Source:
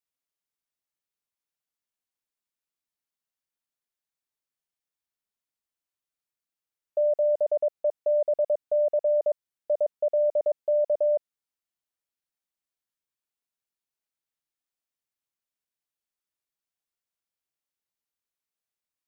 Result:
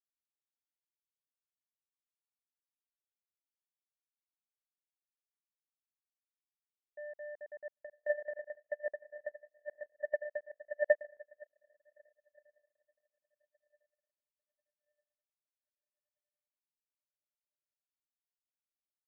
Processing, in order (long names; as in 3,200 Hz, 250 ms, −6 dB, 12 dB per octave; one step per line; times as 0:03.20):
feedback delay with all-pass diffusion 926 ms, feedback 70%, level −3 dB
power curve on the samples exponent 3
expander for the loud parts 2.5 to 1, over −40 dBFS
level +2 dB